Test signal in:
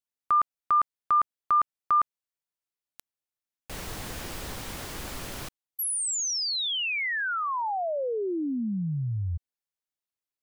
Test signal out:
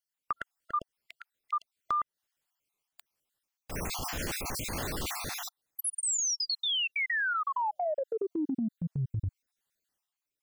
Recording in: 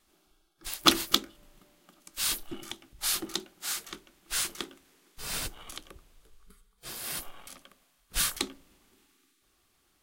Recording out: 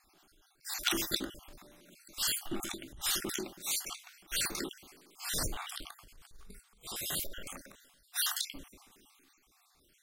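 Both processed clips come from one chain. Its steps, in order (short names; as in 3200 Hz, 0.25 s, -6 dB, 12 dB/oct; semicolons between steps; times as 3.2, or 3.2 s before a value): random spectral dropouts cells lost 49%; transient shaper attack -7 dB, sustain +6 dB; compressor 8:1, threshold -33 dBFS; gain +5 dB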